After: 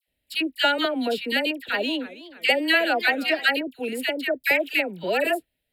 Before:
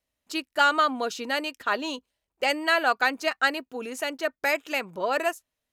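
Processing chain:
phaser with its sweep stopped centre 2,700 Hz, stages 4
all-pass dispersion lows, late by 77 ms, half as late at 1,200 Hz
0:01.39–0:03.46: feedback echo with a swinging delay time 315 ms, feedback 47%, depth 177 cents, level −17 dB
level +7 dB

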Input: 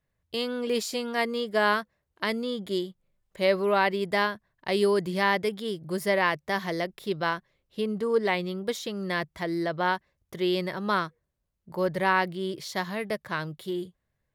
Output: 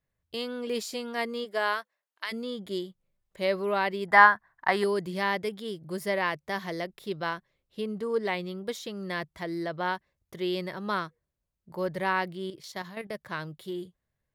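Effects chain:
0:01.44–0:02.31: high-pass filter 310 Hz → 1,200 Hz 12 dB per octave
0:04.08–0:04.84: flat-topped bell 1,200 Hz +15.5 dB
0:12.50–0:13.15: output level in coarse steps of 10 dB
level −4 dB

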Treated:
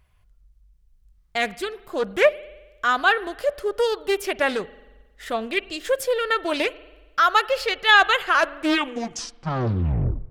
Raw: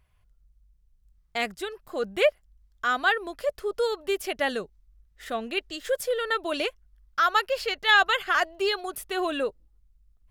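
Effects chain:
turntable brake at the end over 2.04 s
spring reverb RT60 1.2 s, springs 45 ms, chirp 75 ms, DRR 18.5 dB
highs frequency-modulated by the lows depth 0.76 ms
level +4.5 dB

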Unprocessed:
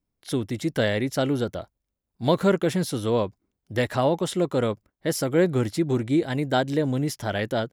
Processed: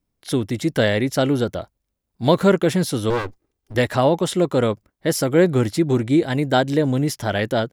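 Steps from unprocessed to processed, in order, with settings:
0:03.10–0:03.75: lower of the sound and its delayed copy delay 2.5 ms
level +5 dB

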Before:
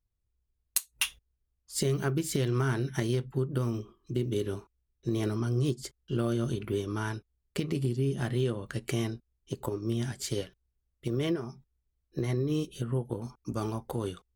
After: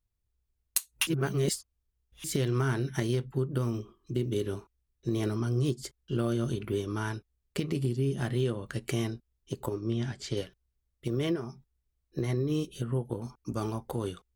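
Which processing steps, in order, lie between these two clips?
0:01.07–0:02.24: reverse
0:09.80–0:10.37: low-pass filter 4,900 Hz 12 dB per octave

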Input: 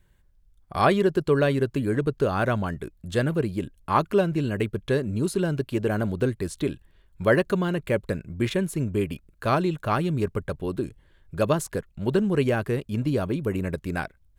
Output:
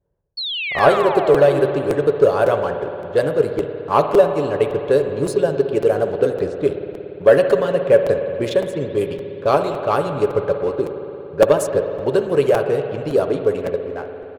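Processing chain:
fade-out on the ending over 0.85 s
high-pass filter 83 Hz 12 dB per octave
low-pass that shuts in the quiet parts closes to 780 Hz, open at −19.5 dBFS
comb filter 7.1 ms, depth 30%
harmonic and percussive parts rebalanced percussive +8 dB
octave-band graphic EQ 250/500/2,000 Hz −8/+10/−5 dB
leveller curve on the samples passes 1
hum removal 123.4 Hz, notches 35
sound drawn into the spectrogram fall, 0:00.37–0:01.62, 290–4,500 Hz −19 dBFS
spring reverb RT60 3.3 s, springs 57 ms, chirp 30 ms, DRR 6.5 dB
regular buffer underruns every 0.56 s, samples 256, repeat, from 0:00.78
level −6 dB

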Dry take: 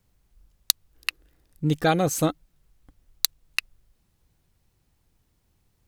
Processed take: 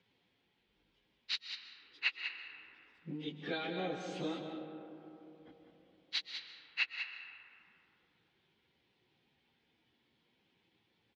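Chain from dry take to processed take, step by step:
downward compressor 4 to 1, threshold −35 dBFS, peak gain reduction 18 dB
time stretch by phase vocoder 1.9×
loudspeaker in its box 270–4,000 Hz, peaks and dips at 630 Hz −9 dB, 1,200 Hz −8 dB, 2,300 Hz +4 dB, 3,300 Hz +7 dB
single-tap delay 194 ms −8.5 dB
on a send at −6.5 dB: convolution reverb RT60 3.4 s, pre-delay 95 ms
on the sum: level +3 dB

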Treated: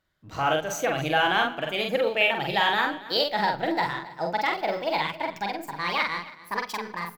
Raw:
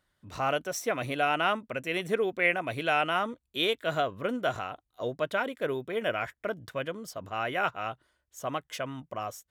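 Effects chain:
gliding playback speed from 101% → 164%
parametric band 9,300 Hz −12 dB 0.3 octaves
in parallel at −3.5 dB: slack as between gear wheels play −40.5 dBFS
on the sum: double-tracking delay 45 ms −3 dB
on a send: single-tap delay 275 ms −18 dB
on the sum: rectangular room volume 3,100 cubic metres, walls furnished, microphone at 0.65 metres
level −2 dB

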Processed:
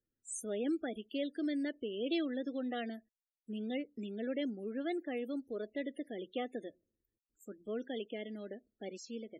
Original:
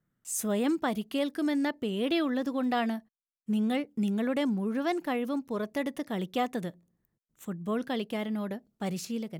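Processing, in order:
phaser with its sweep stopped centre 400 Hz, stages 4
spectral peaks only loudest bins 32
level −5 dB

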